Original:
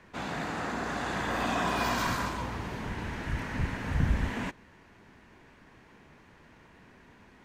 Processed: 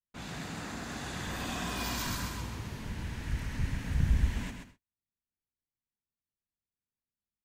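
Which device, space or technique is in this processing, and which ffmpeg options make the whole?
smiley-face EQ: -af "aecho=1:1:131|262|393:0.501|0.12|0.0289,agate=range=0.00794:threshold=0.00447:ratio=16:detection=peak,lowshelf=f=190:g=9,equalizer=f=710:t=o:w=2.6:g=-4,highshelf=f=7400:g=7,adynamicequalizer=threshold=0.00447:dfrequency=2400:dqfactor=0.7:tfrequency=2400:tqfactor=0.7:attack=5:release=100:ratio=0.375:range=3:mode=boostabove:tftype=highshelf,volume=0.398"

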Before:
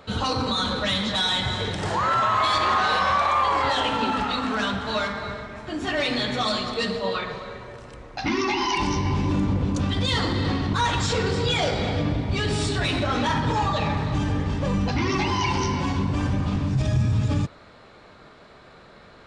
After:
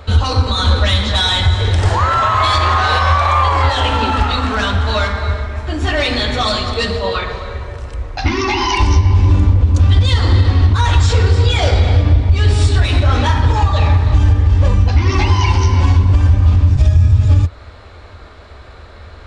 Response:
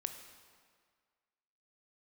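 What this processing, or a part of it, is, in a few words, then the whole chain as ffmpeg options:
car stereo with a boomy subwoofer: -af "lowshelf=f=110:t=q:w=3:g=11,alimiter=limit=0.282:level=0:latency=1:release=266,volume=2.51"

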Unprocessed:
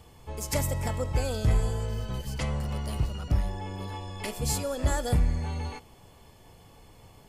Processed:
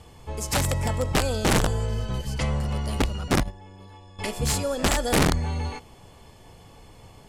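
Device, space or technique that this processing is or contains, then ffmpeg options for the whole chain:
overflowing digital effects unit: -filter_complex "[0:a]asettb=1/sr,asplit=3[s0][s1][s2];[s0]atrim=end=3.434[s3];[s1]atrim=start=3.43:end=4.19,asetpts=PTS-STARTPTS,afade=t=in:d=0.004:c=qsin,afade=t=out:st=0.756:d=0.004:c=qsin,agate=range=0.2:threshold=0.0398:ratio=16:detection=peak[s4];[s2]atrim=start=4.186[s5];[s3][s4]acrossfade=d=0.004:c1=hsin:c2=qsin[s6];[s6][s5]acrossfade=d=0.004:c1=qsin:c2=hsin,aeval=exprs='(mod(9.44*val(0)+1,2)-1)/9.44':c=same,lowpass=11000,volume=1.68"

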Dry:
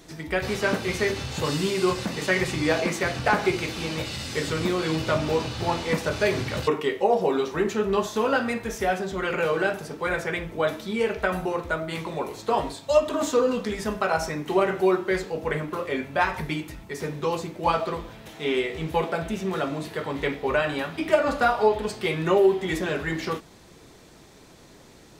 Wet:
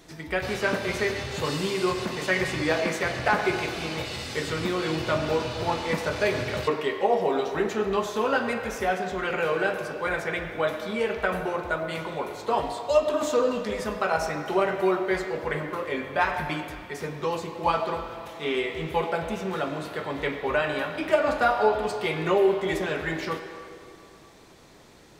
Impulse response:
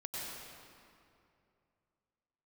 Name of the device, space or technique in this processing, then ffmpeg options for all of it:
filtered reverb send: -filter_complex "[0:a]asplit=2[s0][s1];[s1]highpass=400,lowpass=4800[s2];[1:a]atrim=start_sample=2205[s3];[s2][s3]afir=irnorm=-1:irlink=0,volume=0.531[s4];[s0][s4]amix=inputs=2:normalize=0,volume=0.708"

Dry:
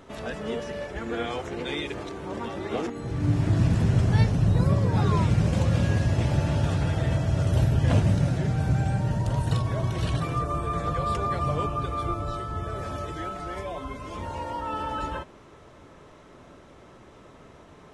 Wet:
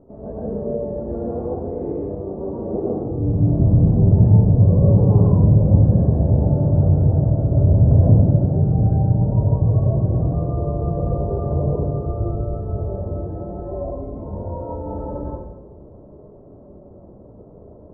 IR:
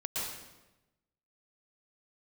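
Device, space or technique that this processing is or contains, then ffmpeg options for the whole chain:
next room: -filter_complex "[0:a]lowpass=f=650:w=0.5412,lowpass=f=650:w=1.3066[s0];[1:a]atrim=start_sample=2205[s1];[s0][s1]afir=irnorm=-1:irlink=0,volume=1.5"

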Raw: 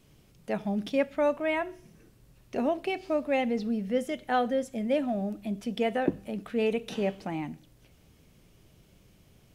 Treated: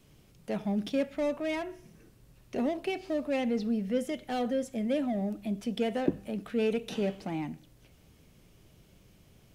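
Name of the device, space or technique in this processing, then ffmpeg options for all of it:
one-band saturation: -filter_complex "[0:a]acrossover=split=520|2800[s0][s1][s2];[s1]asoftclip=type=tanh:threshold=0.0133[s3];[s0][s3][s2]amix=inputs=3:normalize=0"

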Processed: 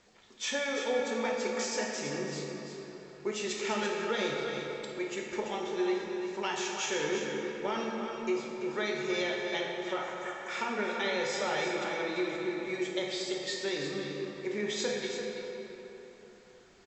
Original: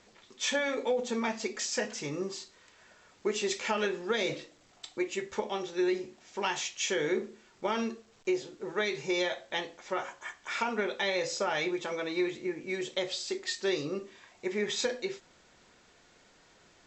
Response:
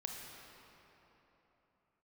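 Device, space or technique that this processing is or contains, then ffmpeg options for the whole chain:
cave: -filter_complex "[0:a]aecho=1:1:338:0.376[s0];[1:a]atrim=start_sample=2205[s1];[s0][s1]afir=irnorm=-1:irlink=0"

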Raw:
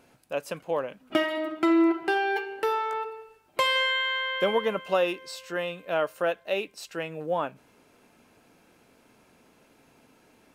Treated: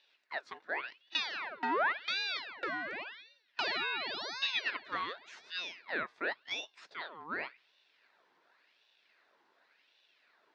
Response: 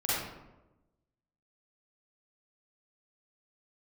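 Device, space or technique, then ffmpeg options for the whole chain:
voice changer toy: -af "aeval=exprs='val(0)*sin(2*PI*1900*n/s+1900*0.7/0.9*sin(2*PI*0.9*n/s))':c=same,highpass=490,equalizer=f=510:t=q:w=4:g=-4,equalizer=f=800:t=q:w=4:g=-6,equalizer=f=1200:t=q:w=4:g=-7,equalizer=f=2200:t=q:w=4:g=-5,equalizer=f=3100:t=q:w=4:g=-8,lowpass=f=4300:w=0.5412,lowpass=f=4300:w=1.3066,volume=0.794"

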